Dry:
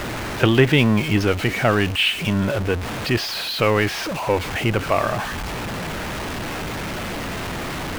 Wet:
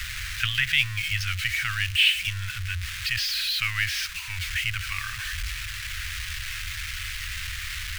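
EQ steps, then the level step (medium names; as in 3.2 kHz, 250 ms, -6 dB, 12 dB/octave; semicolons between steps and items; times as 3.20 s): inverse Chebyshev band-stop 240–600 Hz, stop band 70 dB; 0.0 dB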